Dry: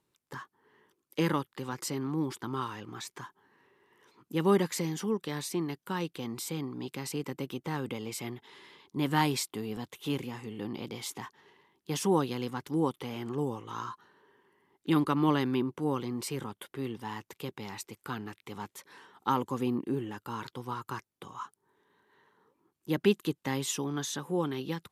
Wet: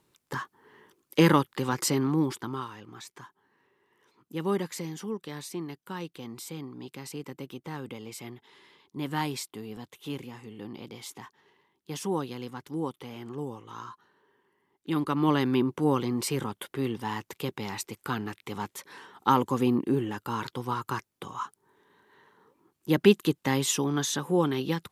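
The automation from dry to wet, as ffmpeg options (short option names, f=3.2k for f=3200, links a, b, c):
-af "volume=18dB,afade=t=out:st=1.93:d=0.75:silence=0.251189,afade=t=in:st=14.89:d=0.88:silence=0.334965"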